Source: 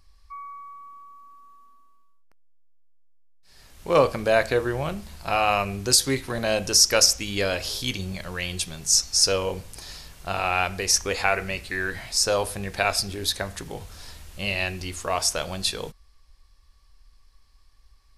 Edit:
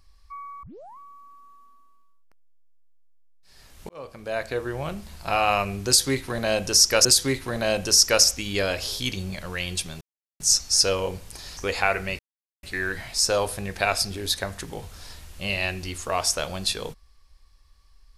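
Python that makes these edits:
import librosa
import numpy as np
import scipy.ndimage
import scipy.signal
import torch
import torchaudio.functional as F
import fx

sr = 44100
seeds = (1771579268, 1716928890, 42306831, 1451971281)

y = fx.edit(x, sr, fx.tape_start(start_s=0.63, length_s=0.35),
    fx.fade_in_span(start_s=3.89, length_s=1.28),
    fx.repeat(start_s=5.87, length_s=1.18, count=2),
    fx.insert_silence(at_s=8.83, length_s=0.39),
    fx.cut(start_s=10.0, length_s=0.99),
    fx.insert_silence(at_s=11.61, length_s=0.44), tone=tone)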